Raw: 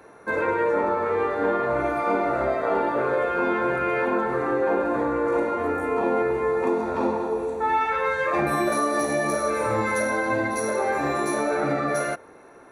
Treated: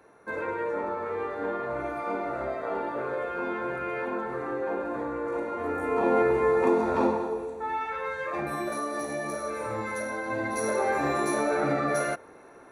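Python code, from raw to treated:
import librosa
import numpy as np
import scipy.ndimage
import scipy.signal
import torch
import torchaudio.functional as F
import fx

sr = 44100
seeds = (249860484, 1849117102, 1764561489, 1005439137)

y = fx.gain(x, sr, db=fx.line((5.45, -8.0), (6.18, 0.5), (7.01, 0.5), (7.54, -8.5), (10.23, -8.5), (10.67, -2.0)))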